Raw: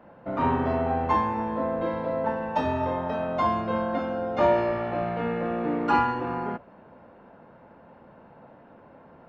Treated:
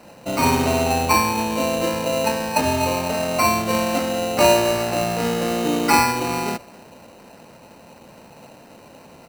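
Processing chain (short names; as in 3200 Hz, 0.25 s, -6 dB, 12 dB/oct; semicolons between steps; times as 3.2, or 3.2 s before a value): speakerphone echo 0.27 s, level -24 dB; sample-rate reducer 3400 Hz, jitter 0%; gain +6 dB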